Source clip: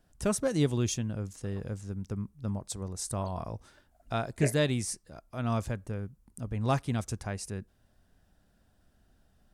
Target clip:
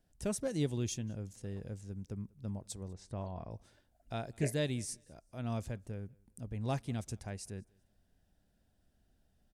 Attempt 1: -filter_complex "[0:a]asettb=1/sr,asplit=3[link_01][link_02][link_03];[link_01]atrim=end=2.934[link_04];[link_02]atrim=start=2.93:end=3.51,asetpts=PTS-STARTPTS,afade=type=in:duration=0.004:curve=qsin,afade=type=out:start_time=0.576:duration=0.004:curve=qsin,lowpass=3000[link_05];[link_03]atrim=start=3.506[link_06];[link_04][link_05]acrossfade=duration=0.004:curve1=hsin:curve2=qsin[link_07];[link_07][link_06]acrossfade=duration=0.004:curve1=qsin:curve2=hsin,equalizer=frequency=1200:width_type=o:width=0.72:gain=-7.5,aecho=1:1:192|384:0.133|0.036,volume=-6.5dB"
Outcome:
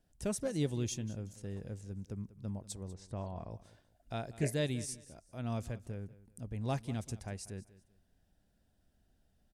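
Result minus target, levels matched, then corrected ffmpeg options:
echo-to-direct +10 dB
-filter_complex "[0:a]asettb=1/sr,asplit=3[link_01][link_02][link_03];[link_01]atrim=end=2.934[link_04];[link_02]atrim=start=2.93:end=3.51,asetpts=PTS-STARTPTS,afade=type=in:duration=0.004:curve=qsin,afade=type=out:start_time=0.576:duration=0.004:curve=qsin,lowpass=3000[link_05];[link_03]atrim=start=3.506[link_06];[link_04][link_05]acrossfade=duration=0.004:curve1=hsin:curve2=qsin[link_07];[link_07][link_06]acrossfade=duration=0.004:curve1=qsin:curve2=hsin,equalizer=frequency=1200:width_type=o:width=0.72:gain=-7.5,aecho=1:1:192|384:0.0422|0.0114,volume=-6.5dB"

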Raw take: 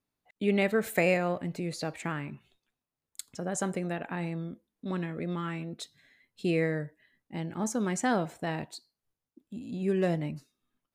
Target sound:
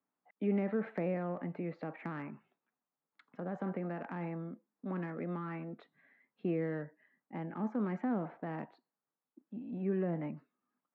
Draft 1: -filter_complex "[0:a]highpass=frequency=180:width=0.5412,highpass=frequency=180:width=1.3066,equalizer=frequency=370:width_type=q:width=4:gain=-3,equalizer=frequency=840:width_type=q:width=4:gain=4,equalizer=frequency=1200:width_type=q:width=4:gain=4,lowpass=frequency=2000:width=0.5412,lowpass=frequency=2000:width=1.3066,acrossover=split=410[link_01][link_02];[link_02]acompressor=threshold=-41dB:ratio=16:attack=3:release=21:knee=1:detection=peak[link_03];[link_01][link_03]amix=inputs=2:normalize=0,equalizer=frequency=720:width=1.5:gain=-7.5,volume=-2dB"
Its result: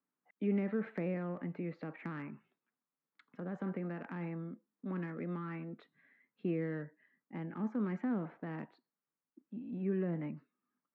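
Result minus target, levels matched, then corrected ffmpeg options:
1,000 Hz band −4.0 dB
-filter_complex "[0:a]highpass=frequency=180:width=0.5412,highpass=frequency=180:width=1.3066,equalizer=frequency=370:width_type=q:width=4:gain=-3,equalizer=frequency=840:width_type=q:width=4:gain=4,equalizer=frequency=1200:width_type=q:width=4:gain=4,lowpass=frequency=2000:width=0.5412,lowpass=frequency=2000:width=1.3066,acrossover=split=410[link_01][link_02];[link_02]acompressor=threshold=-41dB:ratio=16:attack=3:release=21:knee=1:detection=peak[link_03];[link_01][link_03]amix=inputs=2:normalize=0,volume=-2dB"

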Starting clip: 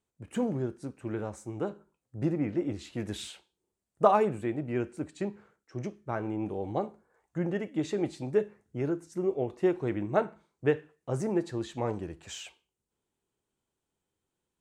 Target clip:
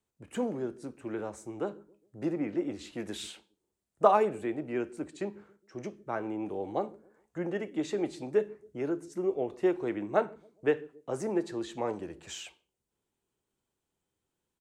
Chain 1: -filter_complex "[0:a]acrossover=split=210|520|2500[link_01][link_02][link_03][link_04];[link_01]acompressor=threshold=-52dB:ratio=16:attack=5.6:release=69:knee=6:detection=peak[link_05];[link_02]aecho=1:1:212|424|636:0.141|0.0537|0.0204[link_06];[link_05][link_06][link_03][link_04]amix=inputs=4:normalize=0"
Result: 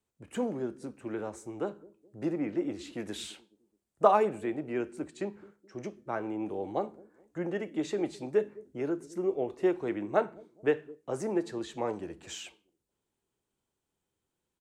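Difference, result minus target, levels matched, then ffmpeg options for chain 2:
echo 75 ms late
-filter_complex "[0:a]acrossover=split=210|520|2500[link_01][link_02][link_03][link_04];[link_01]acompressor=threshold=-52dB:ratio=16:attack=5.6:release=69:knee=6:detection=peak[link_05];[link_02]aecho=1:1:137|274|411:0.141|0.0537|0.0204[link_06];[link_05][link_06][link_03][link_04]amix=inputs=4:normalize=0"

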